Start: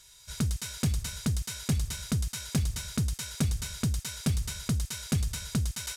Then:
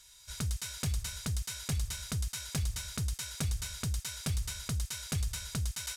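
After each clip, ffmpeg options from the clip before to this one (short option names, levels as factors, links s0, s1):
-af "equalizer=f=240:t=o:w=1.6:g=-10,volume=0.794"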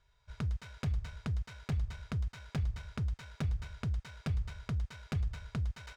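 -af "adynamicsmooth=sensitivity=4.5:basefreq=1200"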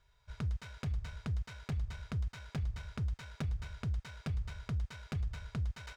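-af "alimiter=level_in=2:limit=0.0631:level=0:latency=1:release=133,volume=0.501,volume=1.12"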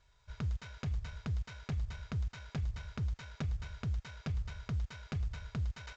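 -ar 16000 -c:a pcm_mulaw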